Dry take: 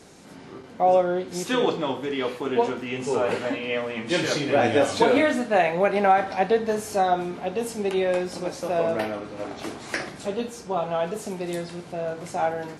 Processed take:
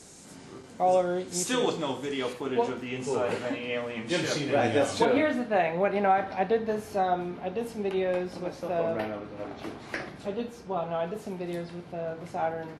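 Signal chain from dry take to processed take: bass shelf 150 Hz +5 dB; resampled via 32 kHz; peaking EQ 8 kHz +13 dB 1.2 oct, from 2.33 s +2.5 dB, from 5.05 s -10.5 dB; trim -5 dB

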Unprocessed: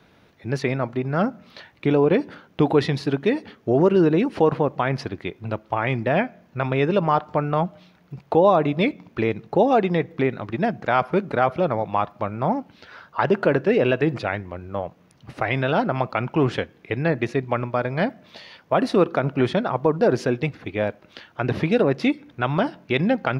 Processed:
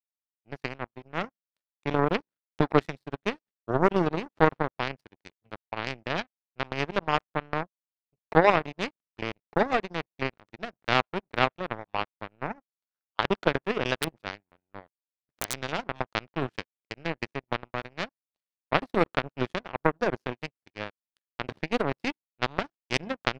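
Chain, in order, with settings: 14.01–15.56 s: integer overflow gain 9 dB; power-law waveshaper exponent 3; trim +4 dB

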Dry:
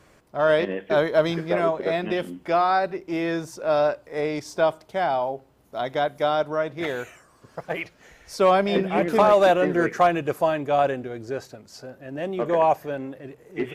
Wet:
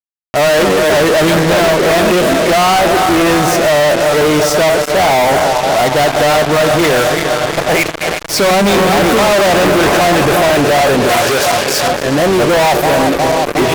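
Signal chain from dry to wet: backward echo that repeats 180 ms, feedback 80%, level -12 dB; fuzz box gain 42 dB, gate -39 dBFS; 11.09–11.88 s: tilt shelf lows -4.5 dB, about 860 Hz; trim +4.5 dB

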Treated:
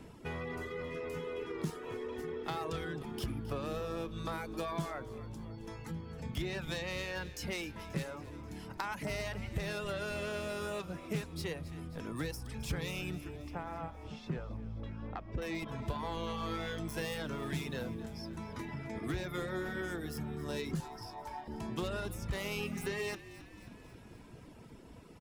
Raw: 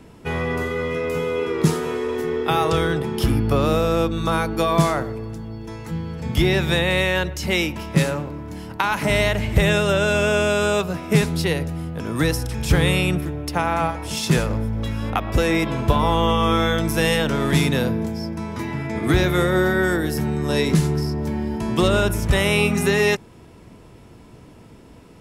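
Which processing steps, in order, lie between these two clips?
self-modulated delay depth 0.12 ms; reverb removal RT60 0.84 s; compression 2:1, threshold -38 dBFS, peak gain reduction 14.5 dB; 13.35–15.42 s: tape spacing loss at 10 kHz 31 dB; 20.80–21.48 s: resonant high-pass 810 Hz, resonance Q 4.4; frequency-shifting echo 267 ms, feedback 63%, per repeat -52 Hz, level -15.5 dB; trim -6 dB

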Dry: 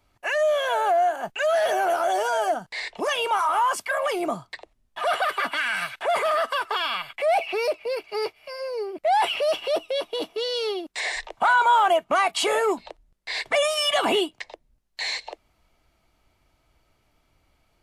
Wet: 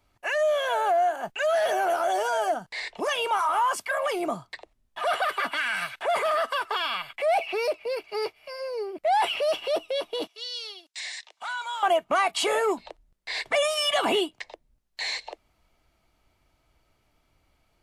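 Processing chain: 10.27–11.83 s: band-pass filter 5.4 kHz, Q 0.89; trim -2 dB

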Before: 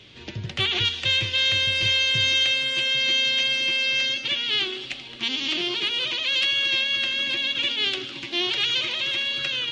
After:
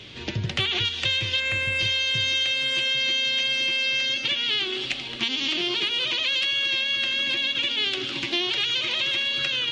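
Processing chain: time-frequency box 1.40–1.79 s, 2.8–6.7 kHz -12 dB; compression, threshold -28 dBFS, peak gain reduction 9.5 dB; trim +6 dB

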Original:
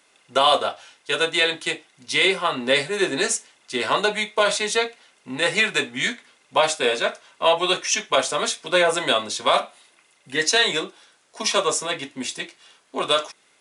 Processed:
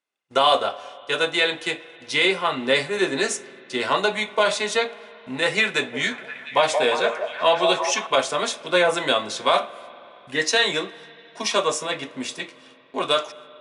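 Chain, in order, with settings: 5.65–8.07 s: repeats whose band climbs or falls 176 ms, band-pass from 610 Hz, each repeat 0.7 oct, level -3 dB; gate -50 dBFS, range -26 dB; treble shelf 7.1 kHz -8.5 dB; spring tank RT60 3.7 s, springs 46/58 ms, chirp 65 ms, DRR 17.5 dB

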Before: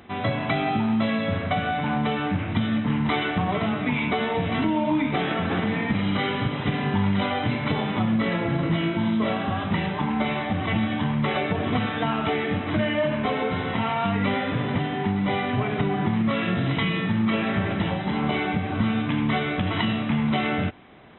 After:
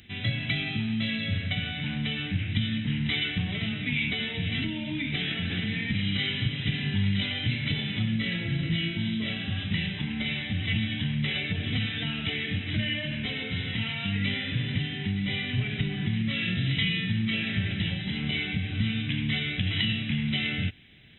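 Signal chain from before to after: FFT filter 120 Hz 0 dB, 1.1 kHz -26 dB, 1.7 kHz -5 dB, 2.9 kHz +4 dB

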